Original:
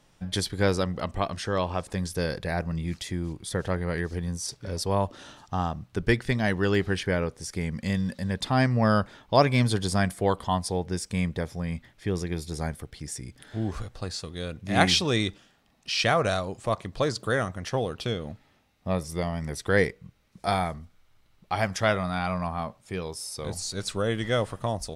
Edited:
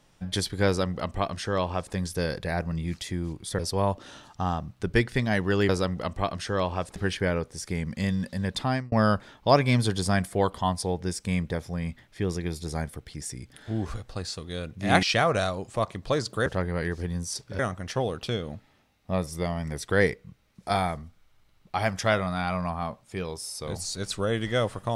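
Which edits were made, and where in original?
0.67–1.94 s: copy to 6.82 s
3.59–4.72 s: move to 17.36 s
8.46–8.78 s: fade out
14.89–15.93 s: delete

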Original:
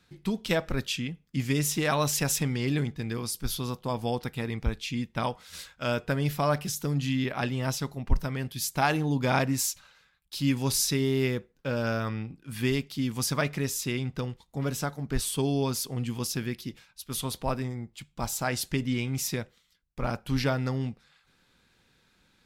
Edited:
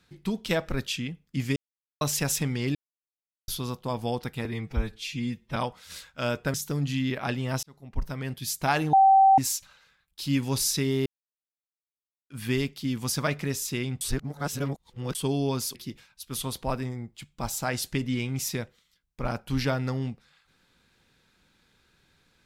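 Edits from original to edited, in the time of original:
1.56–2.01 s: mute
2.75–3.48 s: mute
4.45–5.19 s: stretch 1.5×
6.17–6.68 s: delete
7.77–8.46 s: fade in
9.07–9.52 s: bleep 775 Hz -13.5 dBFS
11.20–12.44 s: mute
14.15–15.29 s: reverse
15.89–16.54 s: delete

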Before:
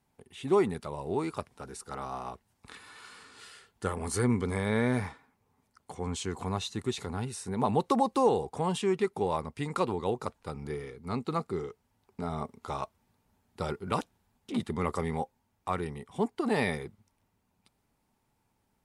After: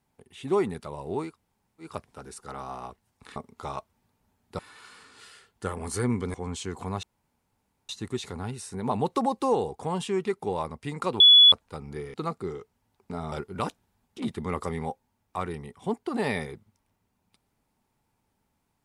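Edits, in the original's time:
1.29 s: insert room tone 0.57 s, crossfade 0.16 s
4.54–5.94 s: delete
6.63 s: insert room tone 0.86 s
9.94–10.26 s: bleep 3.41 kHz -10.5 dBFS
10.88–11.23 s: delete
12.41–13.64 s: move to 2.79 s

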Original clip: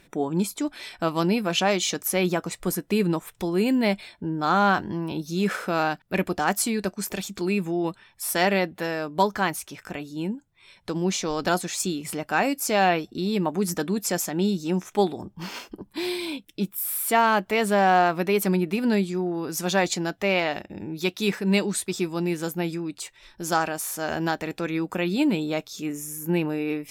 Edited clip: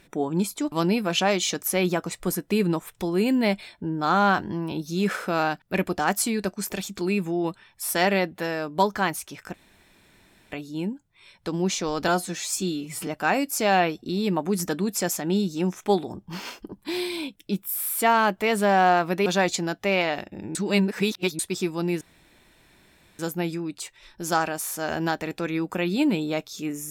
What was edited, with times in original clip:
0.72–1.12 s: delete
9.94 s: insert room tone 0.98 s
11.50–12.16 s: stretch 1.5×
18.35–19.64 s: delete
20.93–21.77 s: reverse
22.39 s: insert room tone 1.18 s

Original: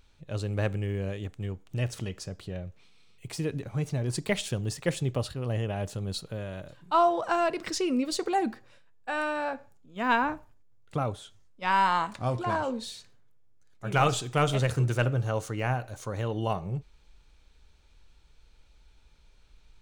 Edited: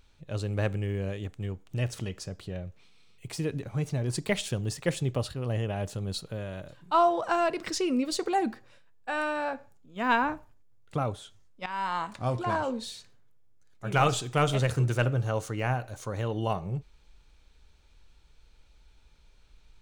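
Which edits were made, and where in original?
11.66–12.29 s: fade in, from -15 dB

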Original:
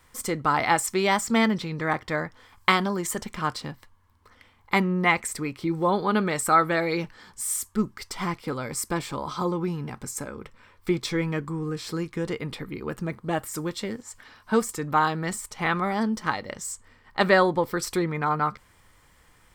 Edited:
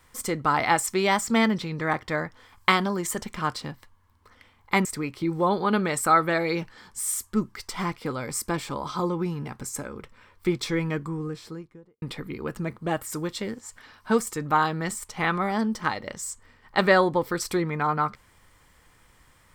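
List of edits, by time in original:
4.85–5.27 s: delete
11.38–12.44 s: studio fade out

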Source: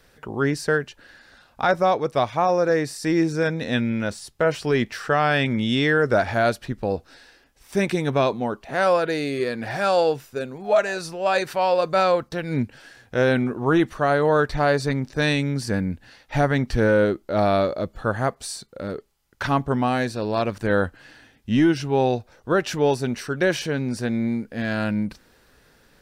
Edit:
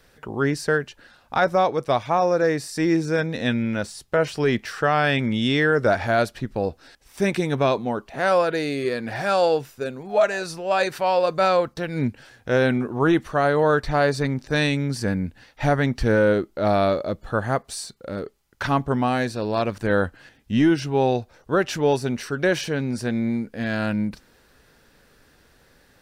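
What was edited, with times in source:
shrink pauses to 45%

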